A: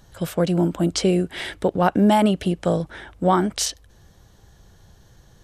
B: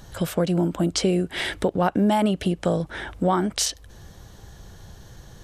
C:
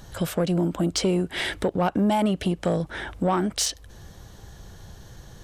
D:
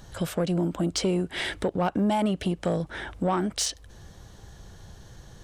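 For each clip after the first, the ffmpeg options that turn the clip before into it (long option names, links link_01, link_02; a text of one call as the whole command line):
ffmpeg -i in.wav -af "acompressor=threshold=-33dB:ratio=2,volume=7dB" out.wav
ffmpeg -i in.wav -af "asoftclip=type=tanh:threshold=-14dB" out.wav
ffmpeg -i in.wav -af "equalizer=frequency=12000:width=7.2:gain=-11,volume=-2.5dB" out.wav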